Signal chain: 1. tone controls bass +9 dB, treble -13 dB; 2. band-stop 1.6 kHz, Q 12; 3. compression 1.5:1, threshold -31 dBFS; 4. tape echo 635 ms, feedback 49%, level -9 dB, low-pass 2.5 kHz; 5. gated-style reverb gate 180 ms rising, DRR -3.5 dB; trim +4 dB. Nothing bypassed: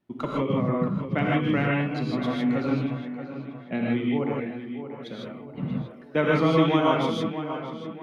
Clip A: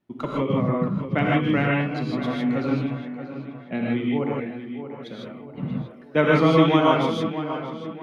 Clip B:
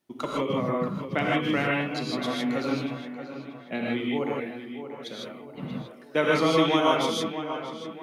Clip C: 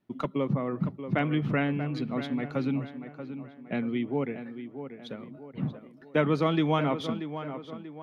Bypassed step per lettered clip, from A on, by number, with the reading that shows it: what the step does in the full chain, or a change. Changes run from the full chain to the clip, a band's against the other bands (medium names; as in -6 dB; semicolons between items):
3, momentary loudness spread change +2 LU; 1, 125 Hz band -7.5 dB; 5, 125 Hz band +2.0 dB